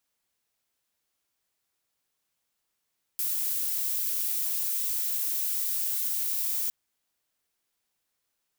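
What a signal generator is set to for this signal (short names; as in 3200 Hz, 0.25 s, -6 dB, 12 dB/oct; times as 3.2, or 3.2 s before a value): noise violet, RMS -29 dBFS 3.51 s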